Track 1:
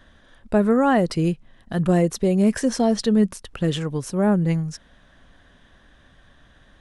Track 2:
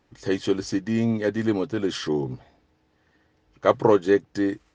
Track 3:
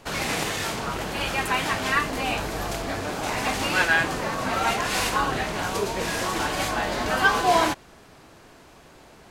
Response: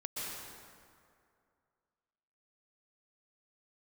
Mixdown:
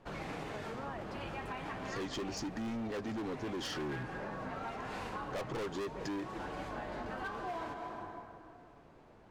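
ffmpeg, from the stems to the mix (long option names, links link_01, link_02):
-filter_complex "[0:a]bandpass=frequency=1300:width_type=q:width=0.75:csg=0,volume=-18dB[link_01];[1:a]adelay=1700,volume=1.5dB[link_02];[2:a]lowpass=frequency=1000:poles=1,flanger=delay=5.3:depth=4.3:regen=-61:speed=0.48:shape=triangular,volume=-6.5dB,asplit=2[link_03][link_04];[link_04]volume=-7dB[link_05];[3:a]atrim=start_sample=2205[link_06];[link_05][link_06]afir=irnorm=-1:irlink=0[link_07];[link_01][link_02][link_03][link_07]amix=inputs=4:normalize=0,volume=26dB,asoftclip=hard,volume=-26dB,acompressor=threshold=-38dB:ratio=6"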